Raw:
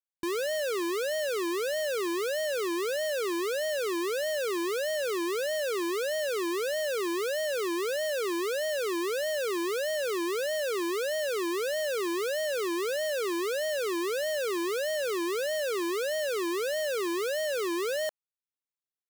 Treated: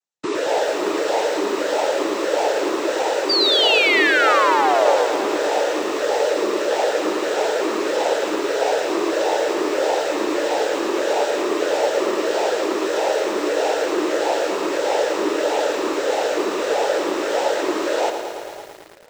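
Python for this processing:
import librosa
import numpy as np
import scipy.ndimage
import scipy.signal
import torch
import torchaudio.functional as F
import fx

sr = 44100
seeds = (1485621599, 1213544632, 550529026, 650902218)

p1 = fx.peak_eq(x, sr, hz=710.0, db=8.0, octaves=0.46)
p2 = fx.noise_vocoder(p1, sr, seeds[0], bands=12)
p3 = fx.spec_paint(p2, sr, seeds[1], shape='fall', start_s=3.29, length_s=1.76, low_hz=470.0, high_hz=4800.0, level_db=-25.0)
p4 = p3 + fx.echo_feedback(p3, sr, ms=550, feedback_pct=35, wet_db=-20.0, dry=0)
p5 = fx.echo_crushed(p4, sr, ms=111, feedback_pct=80, bits=8, wet_db=-8)
y = p5 * 10.0 ** (6.5 / 20.0)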